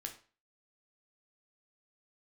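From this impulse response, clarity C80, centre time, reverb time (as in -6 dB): 16.0 dB, 12 ms, 0.40 s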